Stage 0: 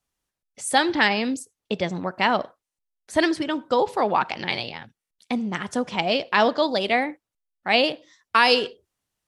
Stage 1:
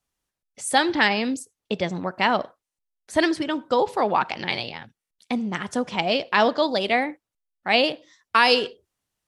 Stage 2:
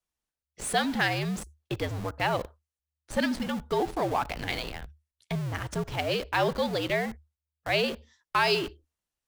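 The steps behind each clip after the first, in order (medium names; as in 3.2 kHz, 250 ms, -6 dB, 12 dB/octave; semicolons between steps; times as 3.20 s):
no audible change
in parallel at -7 dB: Schmitt trigger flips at -33 dBFS; on the sum: frequency shift -76 Hz; trim -8 dB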